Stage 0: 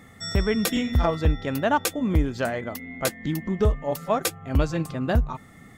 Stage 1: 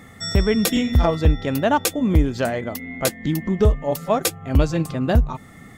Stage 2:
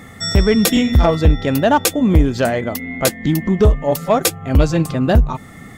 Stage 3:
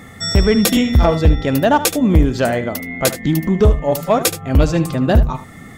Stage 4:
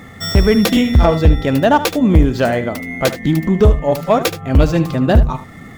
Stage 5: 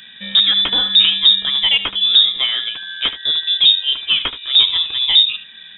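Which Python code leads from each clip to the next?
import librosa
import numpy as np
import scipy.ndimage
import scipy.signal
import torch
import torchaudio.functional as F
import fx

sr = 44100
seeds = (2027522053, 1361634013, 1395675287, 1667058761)

y1 = fx.dynamic_eq(x, sr, hz=1400.0, q=1.0, threshold_db=-40.0, ratio=4.0, max_db=-4)
y1 = F.gain(torch.from_numpy(y1), 5.0).numpy()
y2 = 10.0 ** (-8.5 / 20.0) * np.tanh(y1 / 10.0 ** (-8.5 / 20.0))
y2 = F.gain(torch.from_numpy(y2), 6.0).numpy()
y3 = y2 + 10.0 ** (-13.0 / 20.0) * np.pad(y2, (int(75 * sr / 1000.0), 0))[:len(y2)]
y4 = scipy.ndimage.median_filter(y3, 5, mode='constant')
y4 = F.gain(torch.from_numpy(y4), 1.5).numpy()
y5 = fx.freq_invert(y4, sr, carrier_hz=3700)
y5 = F.gain(torch.from_numpy(y5), -3.5).numpy()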